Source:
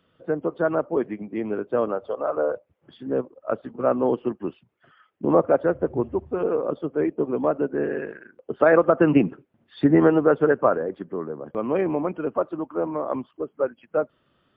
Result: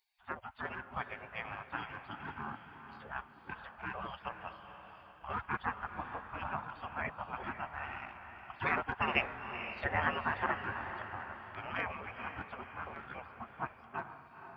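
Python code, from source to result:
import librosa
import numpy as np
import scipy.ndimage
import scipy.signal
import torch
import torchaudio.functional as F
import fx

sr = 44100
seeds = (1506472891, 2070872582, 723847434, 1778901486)

y = fx.spec_gate(x, sr, threshold_db=-25, keep='weak')
y = fx.echo_diffused(y, sr, ms=478, feedback_pct=48, wet_db=-9)
y = y * librosa.db_to_amplitude(4.5)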